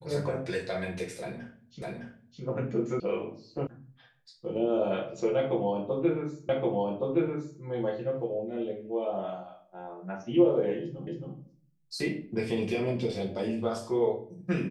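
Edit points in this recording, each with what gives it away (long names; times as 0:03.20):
0:01.82: the same again, the last 0.61 s
0:03.00: cut off before it has died away
0:03.67: cut off before it has died away
0:06.49: the same again, the last 1.12 s
0:11.07: the same again, the last 0.27 s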